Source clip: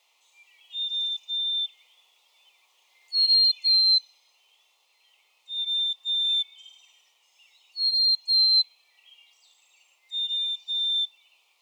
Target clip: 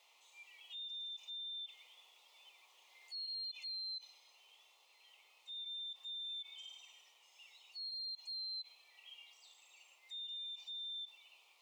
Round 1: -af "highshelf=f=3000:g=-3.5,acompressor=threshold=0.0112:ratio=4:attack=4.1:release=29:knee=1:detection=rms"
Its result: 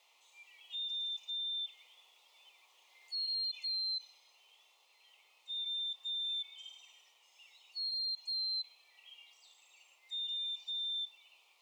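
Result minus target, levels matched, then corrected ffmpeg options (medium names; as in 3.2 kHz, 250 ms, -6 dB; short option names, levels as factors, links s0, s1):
compression: peak gain reduction -7 dB
-af "highshelf=f=3000:g=-3.5,acompressor=threshold=0.00376:ratio=4:attack=4.1:release=29:knee=1:detection=rms"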